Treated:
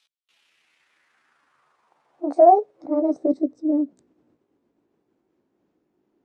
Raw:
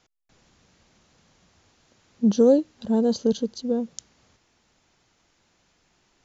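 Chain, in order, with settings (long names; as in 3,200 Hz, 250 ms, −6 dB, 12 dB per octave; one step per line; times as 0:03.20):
pitch glide at a constant tempo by +9.5 semitones ending unshifted
band-pass filter sweep 3,500 Hz → 320 Hz, 0:00.12–0:03.49
level +7.5 dB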